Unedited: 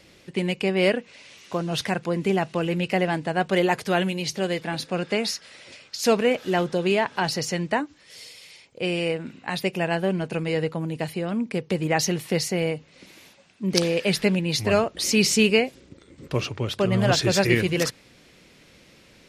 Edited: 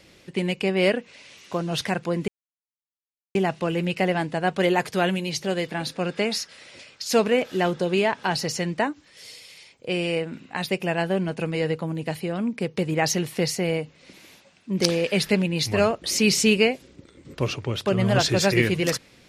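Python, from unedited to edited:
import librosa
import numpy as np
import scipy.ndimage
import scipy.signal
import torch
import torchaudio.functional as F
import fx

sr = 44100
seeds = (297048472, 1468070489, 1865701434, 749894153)

y = fx.edit(x, sr, fx.insert_silence(at_s=2.28, length_s=1.07), tone=tone)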